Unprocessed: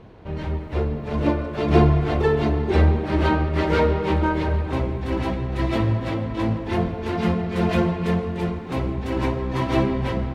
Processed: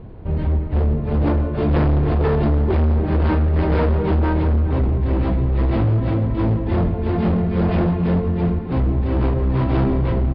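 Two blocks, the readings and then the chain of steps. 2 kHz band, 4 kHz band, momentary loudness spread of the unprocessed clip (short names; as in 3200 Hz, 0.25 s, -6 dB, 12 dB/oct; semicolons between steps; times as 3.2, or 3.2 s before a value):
-3.5 dB, -6.0 dB, 8 LU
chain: tilt -3 dB/oct; overloaded stage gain 14.5 dB; downsampling 11025 Hz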